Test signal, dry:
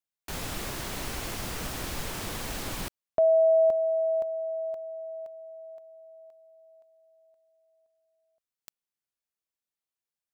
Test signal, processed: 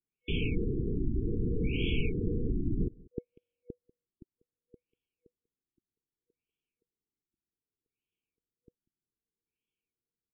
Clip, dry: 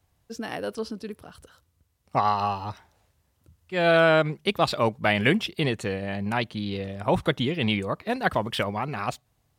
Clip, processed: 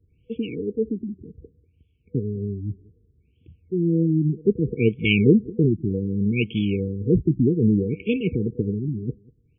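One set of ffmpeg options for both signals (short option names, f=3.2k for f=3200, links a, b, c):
-filter_complex "[0:a]asplit=2[a][b];[b]adelay=192.4,volume=-24dB,highshelf=f=4k:g=-4.33[c];[a][c]amix=inputs=2:normalize=0,afftfilt=real='re*(1-between(b*sr/4096,490,2200))':imag='im*(1-between(b*sr/4096,490,2200))':win_size=4096:overlap=0.75,afftfilt=real='re*lt(b*sr/1024,380*pow(3500/380,0.5+0.5*sin(2*PI*0.64*pts/sr)))':imag='im*lt(b*sr/1024,380*pow(3500/380,0.5+0.5*sin(2*PI*0.64*pts/sr)))':win_size=1024:overlap=0.75,volume=8dB"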